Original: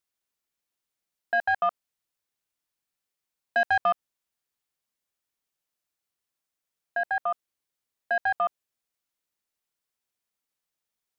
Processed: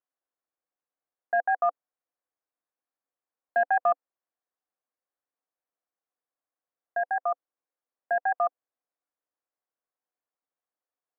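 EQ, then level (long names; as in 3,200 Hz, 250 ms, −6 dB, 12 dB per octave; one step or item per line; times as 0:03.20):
loudspeaker in its box 260–2,000 Hz, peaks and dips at 290 Hz +8 dB, 510 Hz +9 dB, 730 Hz +9 dB, 1,100 Hz +6 dB, 1,600 Hz +3 dB
−7.5 dB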